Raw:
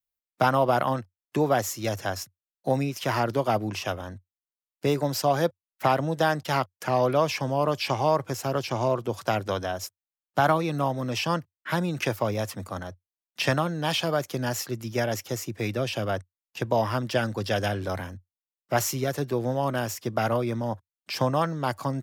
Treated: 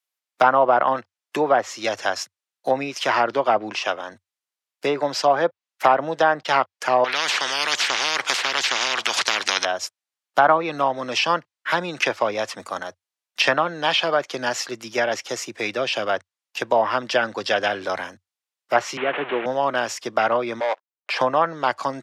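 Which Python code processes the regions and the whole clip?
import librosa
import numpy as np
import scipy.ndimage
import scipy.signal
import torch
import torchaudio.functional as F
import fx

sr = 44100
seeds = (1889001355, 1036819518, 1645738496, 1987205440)

y = fx.chain(x, sr, fx.highpass(hz=150.0, slope=6),
    fx.high_shelf(hz=8600.0, db=-12.0), at=(3.72, 4.12))
y = fx.chain(y, sr, fx.high_shelf(hz=9400.0, db=-8.0),
    fx.spectral_comp(ratio=10.0), at=(7.04, 9.65))
y = fx.chain(y, sr, fx.delta_mod(bps=16000, step_db=-28.0),
    fx.highpass(hz=150.0, slope=24), at=(18.97, 19.46))
y = fx.chain(y, sr, fx.steep_highpass(hz=440.0, slope=36),
    fx.spacing_loss(db_at_10k=38),
    fx.leveller(passes=3), at=(20.6, 21.21))
y = fx.low_shelf(y, sr, hz=130.0, db=-9.5)
y = fx.env_lowpass_down(y, sr, base_hz=1600.0, full_db=-19.0)
y = fx.weighting(y, sr, curve='A')
y = F.gain(torch.from_numpy(y), 8.0).numpy()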